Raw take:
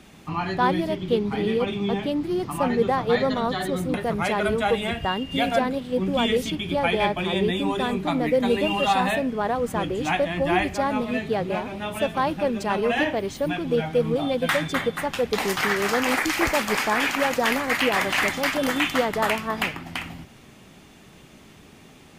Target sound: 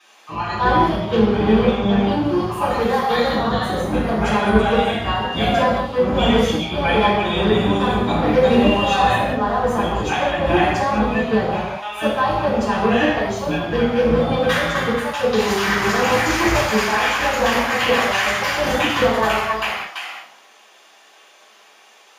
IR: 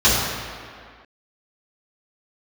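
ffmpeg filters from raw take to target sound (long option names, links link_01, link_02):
-filter_complex "[0:a]asettb=1/sr,asplit=3[link_01][link_02][link_03];[link_01]atrim=end=2.664[link_04];[link_02]atrim=start=2.66:end=3.31,asetpts=PTS-STARTPTS,afade=type=in:duration=0.004:curve=qsin,afade=type=out:start_time=0.646:duration=0.004:curve=qsin,aemphasis=mode=production:type=bsi[link_05];[link_03]atrim=start=3.306[link_06];[link_04][link_05]acrossfade=duration=0.004:curve1=hsin:curve2=qsin[link_07];[link_07][link_06]acrossfade=duration=0.004:curve1=qsin:curve2=hsin,acrossover=split=540[link_08][link_09];[link_08]acrusher=bits=3:mix=0:aa=0.5[link_10];[link_10][link_09]amix=inputs=2:normalize=0[link_11];[1:a]atrim=start_sample=2205,afade=type=out:start_time=0.28:duration=0.01,atrim=end_sample=12789[link_12];[link_11][link_12]afir=irnorm=-1:irlink=0,volume=-17.5dB"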